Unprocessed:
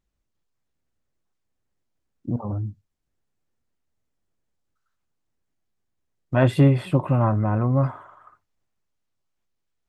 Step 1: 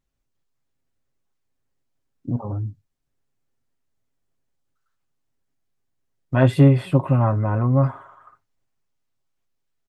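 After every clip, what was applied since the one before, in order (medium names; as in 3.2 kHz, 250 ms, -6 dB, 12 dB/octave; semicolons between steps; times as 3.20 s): comb 7.4 ms, depth 40%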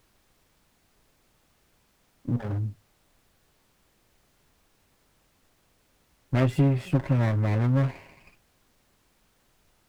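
comb filter that takes the minimum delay 0.39 ms; compression 2.5:1, threshold -18 dBFS, peak gain reduction 7 dB; added noise pink -64 dBFS; trim -2 dB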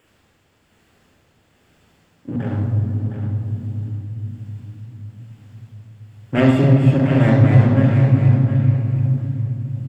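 tremolo 1.1 Hz, depth 38%; feedback delay 713 ms, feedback 18%, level -9 dB; reverberation RT60 3.5 s, pre-delay 44 ms, DRR 1 dB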